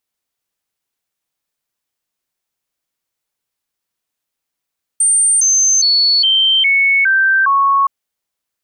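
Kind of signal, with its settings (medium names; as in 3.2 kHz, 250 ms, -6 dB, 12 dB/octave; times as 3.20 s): stepped sine 8.84 kHz down, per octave 2, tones 7, 0.41 s, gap 0.00 s -9 dBFS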